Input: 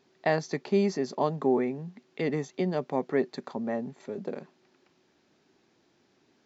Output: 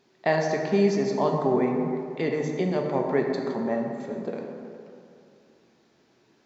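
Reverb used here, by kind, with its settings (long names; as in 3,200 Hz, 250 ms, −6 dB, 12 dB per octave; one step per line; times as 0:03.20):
dense smooth reverb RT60 2.5 s, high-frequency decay 0.45×, DRR 1 dB
level +1.5 dB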